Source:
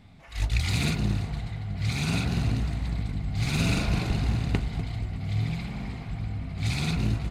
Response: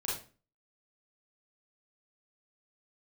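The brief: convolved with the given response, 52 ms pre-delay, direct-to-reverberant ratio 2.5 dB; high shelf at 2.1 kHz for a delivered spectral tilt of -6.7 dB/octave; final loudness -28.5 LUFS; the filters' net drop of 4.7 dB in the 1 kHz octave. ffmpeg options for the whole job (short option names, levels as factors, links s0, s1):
-filter_complex "[0:a]equalizer=f=1000:t=o:g=-5.5,highshelf=f=2100:g=-6,asplit=2[s0][s1];[1:a]atrim=start_sample=2205,adelay=52[s2];[s1][s2]afir=irnorm=-1:irlink=0,volume=0.473[s3];[s0][s3]amix=inputs=2:normalize=0,volume=0.891"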